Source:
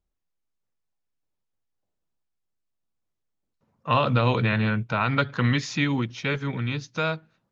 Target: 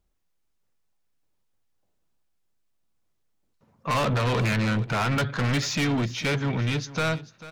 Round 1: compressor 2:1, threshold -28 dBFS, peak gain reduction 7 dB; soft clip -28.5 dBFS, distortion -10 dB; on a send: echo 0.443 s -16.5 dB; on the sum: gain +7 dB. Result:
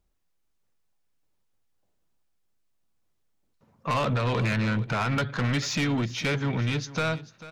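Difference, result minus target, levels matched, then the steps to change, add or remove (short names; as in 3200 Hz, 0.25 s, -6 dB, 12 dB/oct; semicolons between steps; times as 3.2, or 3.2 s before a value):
compressor: peak gain reduction +7 dB
remove: compressor 2:1, threshold -28 dBFS, peak gain reduction 7 dB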